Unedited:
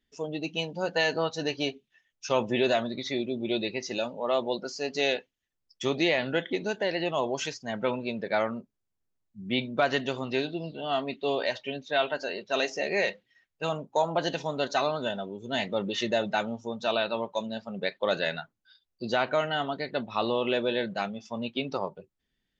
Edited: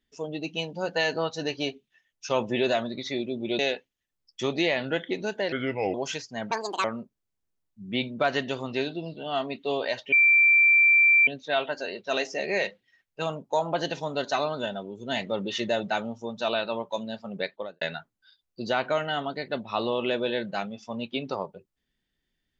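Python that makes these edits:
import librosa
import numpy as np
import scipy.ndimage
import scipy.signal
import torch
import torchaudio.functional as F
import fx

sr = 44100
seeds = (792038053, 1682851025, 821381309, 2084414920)

y = fx.studio_fade_out(x, sr, start_s=17.84, length_s=0.4)
y = fx.edit(y, sr, fx.cut(start_s=3.59, length_s=1.42),
    fx.speed_span(start_s=6.94, length_s=0.32, speed=0.76),
    fx.speed_span(start_s=7.83, length_s=0.59, speed=1.78),
    fx.insert_tone(at_s=11.7, length_s=1.15, hz=2350.0, db=-15.0), tone=tone)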